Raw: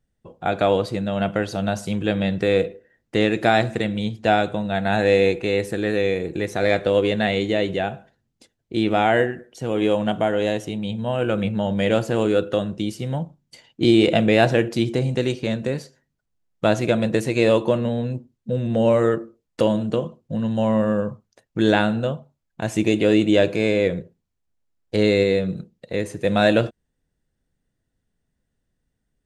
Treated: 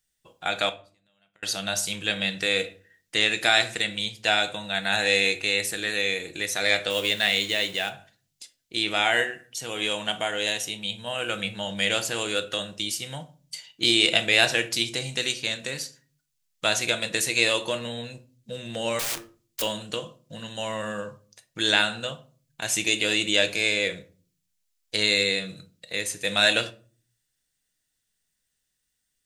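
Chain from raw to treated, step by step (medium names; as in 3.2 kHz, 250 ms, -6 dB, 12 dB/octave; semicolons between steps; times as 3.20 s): 6.90–7.90 s: companding laws mixed up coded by A; tilt shelf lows -9 dB; 0.69–1.43 s: inverted gate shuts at -23 dBFS, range -38 dB; 18.99–19.62 s: integer overflow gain 24.5 dB; treble shelf 2.4 kHz +10.5 dB; simulated room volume 280 m³, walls furnished, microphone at 0.57 m; trim -7 dB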